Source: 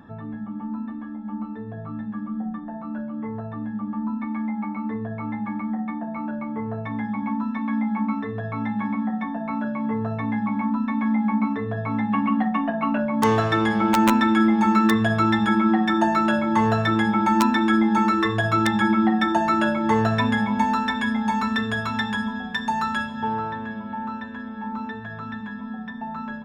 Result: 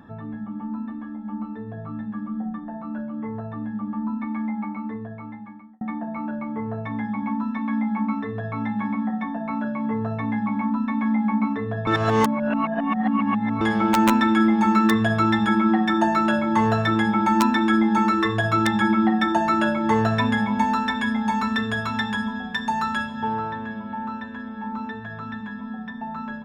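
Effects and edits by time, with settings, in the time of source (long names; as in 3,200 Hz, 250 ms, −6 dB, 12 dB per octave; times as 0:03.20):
0:04.54–0:05.81: fade out
0:11.87–0:13.61: reverse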